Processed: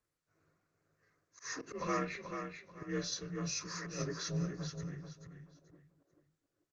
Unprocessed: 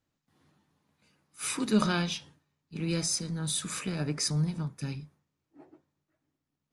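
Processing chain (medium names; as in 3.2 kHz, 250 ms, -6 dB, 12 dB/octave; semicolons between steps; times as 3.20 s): frequency axis rescaled in octaves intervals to 87%; slow attack 143 ms; static phaser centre 850 Hz, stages 6; feedback delay 435 ms, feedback 26%, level -7 dB; trim +1.5 dB; Opus 24 kbps 48 kHz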